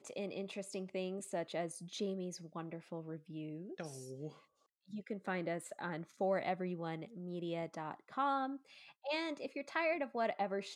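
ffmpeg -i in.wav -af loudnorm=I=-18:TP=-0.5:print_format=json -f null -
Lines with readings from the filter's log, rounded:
"input_i" : "-40.4",
"input_tp" : "-23.1",
"input_lra" : "5.9",
"input_thresh" : "-50.5",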